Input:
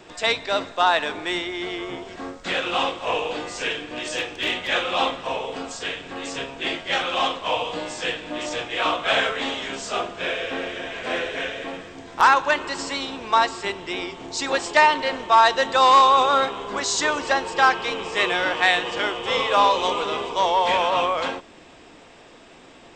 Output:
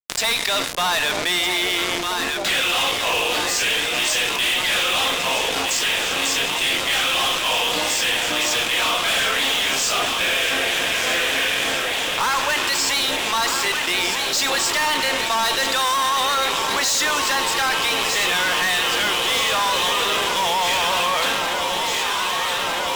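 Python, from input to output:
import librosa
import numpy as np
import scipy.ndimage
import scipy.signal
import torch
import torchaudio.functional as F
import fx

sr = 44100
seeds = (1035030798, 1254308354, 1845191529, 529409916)

y = fx.tilt_shelf(x, sr, db=-7.5, hz=1400.0)
y = fx.fuzz(y, sr, gain_db=27.0, gate_db=-35.0)
y = fx.echo_alternate(y, sr, ms=628, hz=860.0, feedback_pct=88, wet_db=-10.0)
y = fx.env_flatten(y, sr, amount_pct=70)
y = y * librosa.db_to_amplitude(-6.0)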